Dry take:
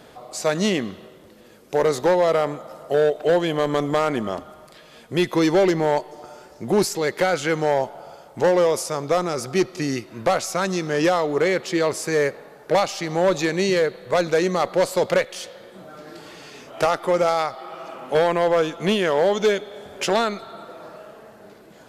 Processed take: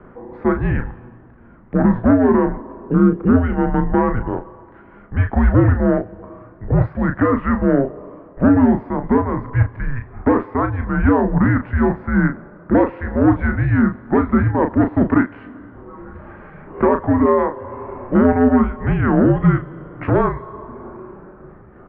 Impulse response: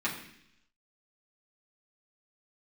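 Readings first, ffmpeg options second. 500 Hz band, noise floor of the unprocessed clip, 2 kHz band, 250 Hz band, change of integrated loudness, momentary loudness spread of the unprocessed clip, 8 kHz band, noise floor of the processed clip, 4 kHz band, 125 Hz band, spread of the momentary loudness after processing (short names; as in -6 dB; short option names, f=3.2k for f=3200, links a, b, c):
-1.0 dB, -48 dBFS, +1.0 dB, +10.5 dB, +4.0 dB, 19 LU, under -40 dB, -44 dBFS, under -20 dB, +13.5 dB, 15 LU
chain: -filter_complex "[0:a]highpass=f=220:t=q:w=0.5412,highpass=f=220:t=q:w=1.307,lowpass=f=2k:t=q:w=0.5176,lowpass=f=2k:t=q:w=0.7071,lowpass=f=2k:t=q:w=1.932,afreqshift=-260,asplit=2[a][b];[b]adelay=35,volume=-7dB[c];[a][c]amix=inputs=2:normalize=0,volume=4.5dB"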